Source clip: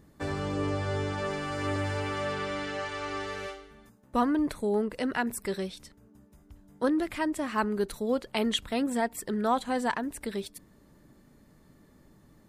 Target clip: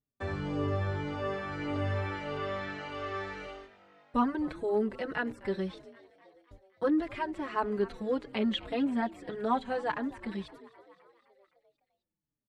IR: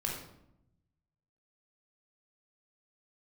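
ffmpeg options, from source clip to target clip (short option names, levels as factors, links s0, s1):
-filter_complex "[0:a]acrossover=split=3700[s0][s1];[s1]acompressor=threshold=0.00112:ratio=4:attack=1:release=60[s2];[s0][s2]amix=inputs=2:normalize=0,lowpass=7600,equalizer=f=120:t=o:w=1.2:g=3,agate=range=0.0224:threshold=0.00398:ratio=16:detection=peak,asplit=7[s3][s4][s5][s6][s7][s8][s9];[s4]adelay=258,afreqshift=49,volume=0.1[s10];[s5]adelay=516,afreqshift=98,volume=0.0638[s11];[s6]adelay=774,afreqshift=147,volume=0.0407[s12];[s7]adelay=1032,afreqshift=196,volume=0.0263[s13];[s8]adelay=1290,afreqshift=245,volume=0.0168[s14];[s9]adelay=1548,afreqshift=294,volume=0.0107[s15];[s3][s10][s11][s12][s13][s14][s15]amix=inputs=7:normalize=0,asplit=2[s16][s17];[s17]adelay=4.4,afreqshift=-1.7[s18];[s16][s18]amix=inputs=2:normalize=1"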